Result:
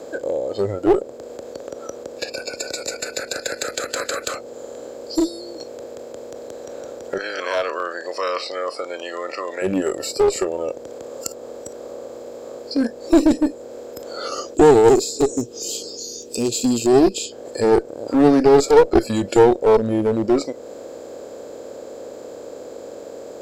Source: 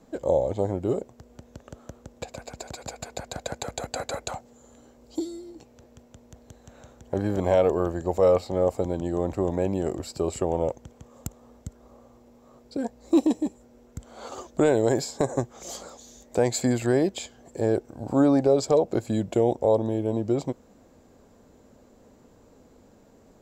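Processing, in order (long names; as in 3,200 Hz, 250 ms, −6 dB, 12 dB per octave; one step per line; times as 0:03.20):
compressor on every frequency bin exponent 0.4
0:07.18–0:09.62: meter weighting curve A
0:14.54–0:17.32: gain on a spectral selection 490–2,400 Hz −10 dB
noise reduction from a noise print of the clip's start 22 dB
parametric band 510 Hz +14.5 dB 1 octave
asymmetric clip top −18 dBFS
one half of a high-frequency compander encoder only
level +2.5 dB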